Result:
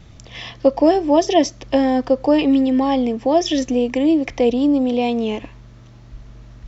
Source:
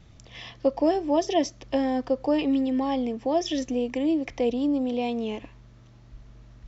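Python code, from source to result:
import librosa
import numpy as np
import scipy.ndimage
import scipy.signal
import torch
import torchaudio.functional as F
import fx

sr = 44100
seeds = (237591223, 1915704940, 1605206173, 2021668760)

y = x * 10.0 ** (8.5 / 20.0)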